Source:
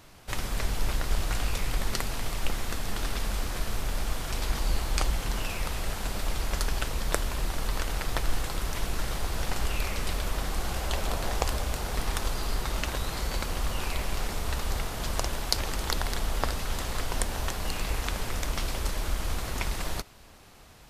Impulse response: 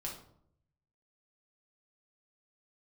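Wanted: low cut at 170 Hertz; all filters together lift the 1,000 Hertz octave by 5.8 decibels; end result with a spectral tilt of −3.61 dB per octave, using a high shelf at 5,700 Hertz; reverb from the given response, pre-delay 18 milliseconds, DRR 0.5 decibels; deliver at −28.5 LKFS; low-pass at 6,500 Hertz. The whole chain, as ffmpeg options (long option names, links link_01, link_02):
-filter_complex "[0:a]highpass=170,lowpass=6500,equalizer=frequency=1000:width_type=o:gain=7.5,highshelf=frequency=5700:gain=-6.5,asplit=2[link_01][link_02];[1:a]atrim=start_sample=2205,adelay=18[link_03];[link_02][link_03]afir=irnorm=-1:irlink=0,volume=0dB[link_04];[link_01][link_04]amix=inputs=2:normalize=0,volume=2dB"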